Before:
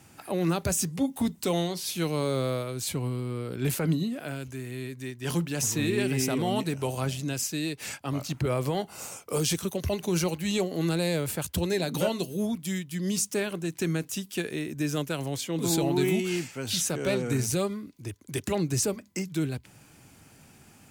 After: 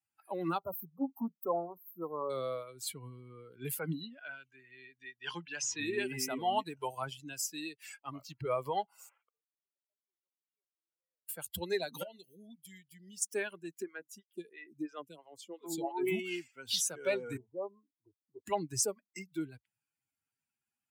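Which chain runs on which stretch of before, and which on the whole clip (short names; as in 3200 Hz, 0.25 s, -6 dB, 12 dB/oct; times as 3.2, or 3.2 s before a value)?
0.58–2.3 brick-wall FIR band-stop 1400–12000 Hz + bell 79 Hz -5 dB 1.9 oct + notches 60/120 Hz
4.01–5.8 LPF 5000 Hz + tilt shelf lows -4 dB, about 630 Hz
9.09–11.29 CVSD 16 kbps + HPF 510 Hz 6 dB/oct + flipped gate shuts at -35 dBFS, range -30 dB
12.03–13.22 compressor 4:1, threshold -33 dBFS + bell 1100 Hz -14.5 dB 0.38 oct
13.82–16.07 high shelf 10000 Hz -7.5 dB + photocell phaser 3 Hz
17.37–18.47 steep low-pass 1100 Hz 96 dB/oct + bell 130 Hz -10 dB 2 oct
whole clip: per-bin expansion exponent 2; HPF 450 Hz 6 dB/oct; dynamic EQ 880 Hz, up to +7 dB, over -53 dBFS, Q 1.7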